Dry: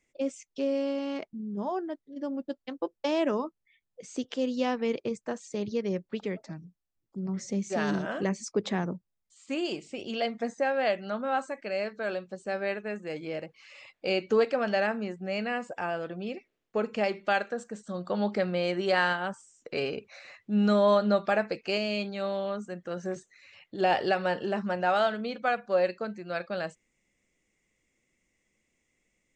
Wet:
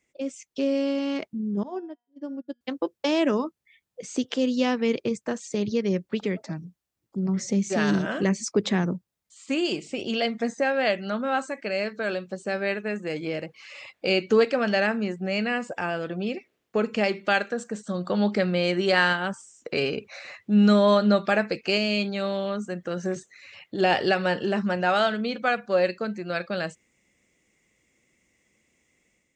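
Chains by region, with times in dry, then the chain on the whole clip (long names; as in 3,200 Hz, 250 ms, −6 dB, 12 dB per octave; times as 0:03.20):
0:01.63–0:02.61: dynamic equaliser 320 Hz, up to +7 dB, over −47 dBFS, Q 1.3 + tuned comb filter 240 Hz, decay 0.74 s, mix 70% + expander for the loud parts 2.5 to 1, over −50 dBFS
whole clip: high-pass filter 54 Hz; dynamic equaliser 760 Hz, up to −6 dB, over −40 dBFS, Q 0.82; automatic gain control gain up to 6 dB; level +1.5 dB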